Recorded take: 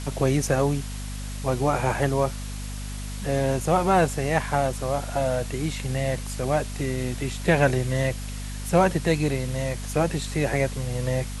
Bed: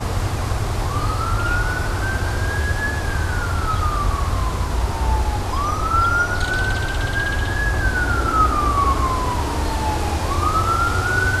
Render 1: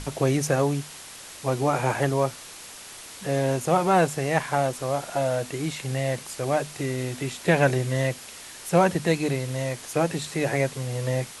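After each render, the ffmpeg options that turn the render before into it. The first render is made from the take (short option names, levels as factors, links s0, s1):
-af "bandreject=f=50:t=h:w=6,bandreject=f=100:t=h:w=6,bandreject=f=150:t=h:w=6,bandreject=f=200:t=h:w=6,bandreject=f=250:t=h:w=6"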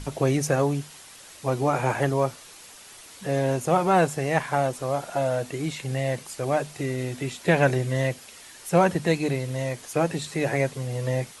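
-af "afftdn=nr=6:nf=-43"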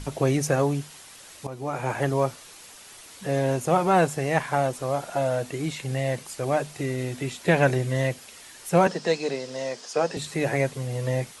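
-filter_complex "[0:a]asettb=1/sr,asplit=3[s0][s1][s2];[s0]atrim=end=8.874[s3];[s1]atrim=start=8.87:end=10.17,asetpts=PTS-STARTPTS,afade=t=in:d=0.004:c=qsin,afade=t=out:st=1.296:d=0.004:c=qsin,highpass=f=210:w=0.5412,highpass=f=210:w=1.3066,equalizer=f=310:t=q:w=4:g=-8,equalizer=f=460:t=q:w=4:g=3,equalizer=f=2200:t=q:w=4:g=-5,equalizer=f=5100:t=q:w=4:g=10,lowpass=f=7900:w=0.5412,lowpass=f=7900:w=1.3066[s4];[s2]atrim=start=10.166[s5];[s3][s4]acrossfade=d=0.004:c1=hsin:c2=qsin[s6];[s6][s5]acrossfade=d=0.004:c1=qsin:c2=hsin,asplit=2[s7][s8];[s7]atrim=end=1.47,asetpts=PTS-STARTPTS,afade=t=out:st=1.466:d=0.004:c=hsin:silence=0.188365[s9];[s8]atrim=start=1.47,asetpts=PTS-STARTPTS,afade=t=in:d=0.69:silence=0.188365[s10];[s9][s10]concat=n=2:v=0:a=1"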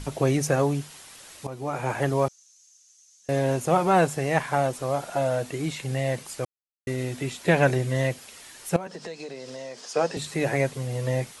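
-filter_complex "[0:a]asettb=1/sr,asplit=3[s0][s1][s2];[s0]atrim=end=2.284[s3];[s1]atrim=start=2.28:end=3.29,asetpts=PTS-STARTPTS,afade=t=in:d=0.004:c=qsin,afade=t=out:st=1.006:d=0.004:c=qsin,bandpass=f=6300:t=q:w=8.3[s4];[s2]atrim=start=3.286[s5];[s3][s4]acrossfade=d=0.004:c1=hsin:c2=qsin[s6];[s6][s5]acrossfade=d=0.004:c1=qsin:c2=hsin,asettb=1/sr,asplit=3[s7][s8][s9];[s7]atrim=end=8.764[s10];[s8]atrim=start=8.76:end=9.86,asetpts=PTS-STARTPTS,afade=t=in:d=0.004:c=qsin,afade=t=out:st=1.096:d=0.004:c=qsin,acompressor=threshold=0.02:ratio=5:attack=3.2:release=140:knee=1:detection=peak[s11];[s9]atrim=start=9.856[s12];[s10][s11]acrossfade=d=0.004:c1=hsin:c2=qsin[s13];[s13][s12]acrossfade=d=0.004:c1=qsin:c2=hsin,asplit=3[s14][s15][s16];[s14]atrim=end=6.45,asetpts=PTS-STARTPTS,afade=t=out:st=6.446:d=0.004:c=hsin[s17];[s15]atrim=start=6.45:end=6.87,asetpts=PTS-STARTPTS,volume=0[s18];[s16]atrim=start=6.87,asetpts=PTS-STARTPTS,afade=t=in:d=0.004:c=hsin[s19];[s17][s18][s19]concat=n=3:v=0:a=1"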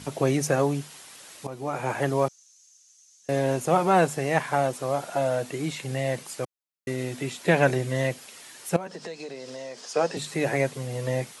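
-af "highpass=130"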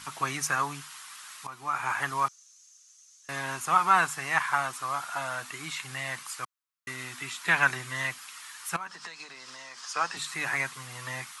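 -af "lowshelf=f=780:t=q:w=3:g=-13.5"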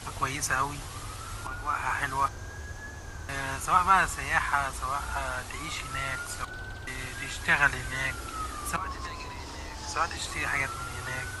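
-filter_complex "[1:a]volume=0.106[s0];[0:a][s0]amix=inputs=2:normalize=0"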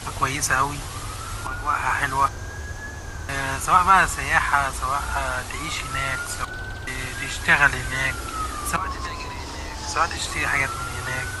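-af "volume=2.24,alimiter=limit=0.708:level=0:latency=1"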